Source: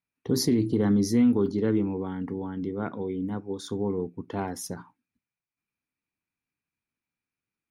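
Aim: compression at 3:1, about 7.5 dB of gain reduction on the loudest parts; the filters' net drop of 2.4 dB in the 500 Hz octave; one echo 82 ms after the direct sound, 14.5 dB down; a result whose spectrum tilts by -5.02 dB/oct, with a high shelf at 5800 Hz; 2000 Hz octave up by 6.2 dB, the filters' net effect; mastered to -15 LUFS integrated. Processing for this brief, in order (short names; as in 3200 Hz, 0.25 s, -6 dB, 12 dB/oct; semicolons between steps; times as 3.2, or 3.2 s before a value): bell 500 Hz -3.5 dB; bell 2000 Hz +7.5 dB; high shelf 5800 Hz +6 dB; compressor 3:1, threshold -28 dBFS; echo 82 ms -14.5 dB; gain +17.5 dB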